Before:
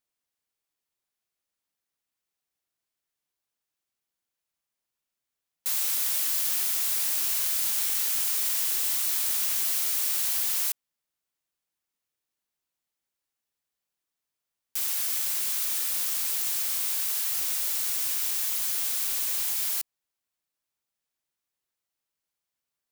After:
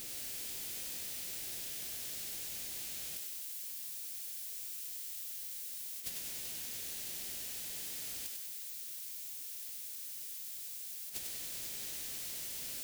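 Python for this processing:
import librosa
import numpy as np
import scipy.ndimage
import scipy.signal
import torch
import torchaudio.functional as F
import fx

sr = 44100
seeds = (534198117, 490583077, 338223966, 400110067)

y = x + 0.5 * 10.0 ** (-27.0 / 20.0) * np.sign(x)
y = fx.gate_flip(y, sr, shuts_db=-19.0, range_db=-28)
y = fx.stretch_vocoder(y, sr, factor=0.56)
y = fx.peak_eq(y, sr, hz=1100.0, db=-13.5, octaves=1.3)
y = fx.over_compress(y, sr, threshold_db=-42.0, ratio=-0.5)
y = fx.echo_thinned(y, sr, ms=97, feedback_pct=56, hz=420.0, wet_db=-4.5)
y = F.gain(torch.from_numpy(y), 1.5).numpy()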